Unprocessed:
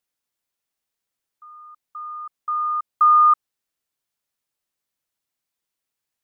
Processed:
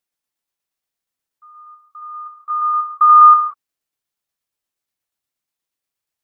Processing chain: dynamic bell 1.1 kHz, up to +6 dB, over -27 dBFS, Q 1.9; tremolo saw down 8.4 Hz, depth 40%; gated-style reverb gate 210 ms flat, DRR 5 dB

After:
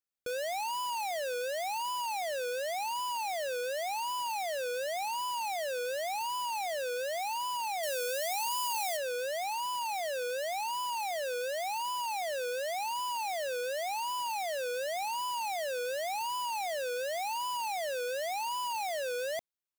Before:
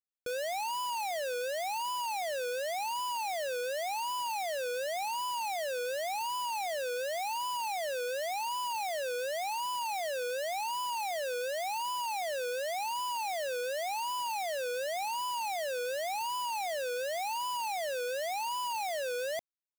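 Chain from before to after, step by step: 7.83–8.97 s: treble shelf 5 kHz +9.5 dB

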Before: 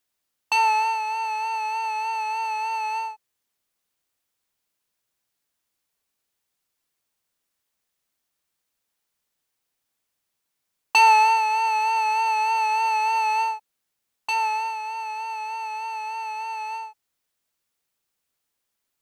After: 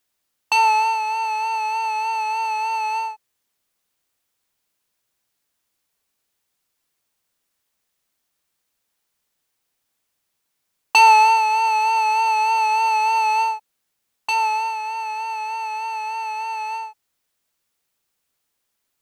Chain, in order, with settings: dynamic bell 1.8 kHz, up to -6 dB, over -41 dBFS, Q 3.1; trim +4 dB

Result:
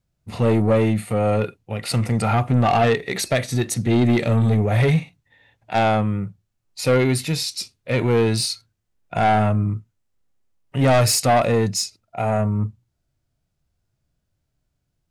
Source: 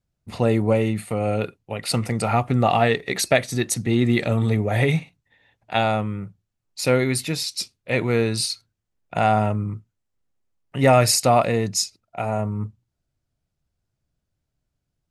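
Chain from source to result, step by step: harmonic-percussive split percussive -8 dB; saturation -18 dBFS, distortion -11 dB; trim +6.5 dB

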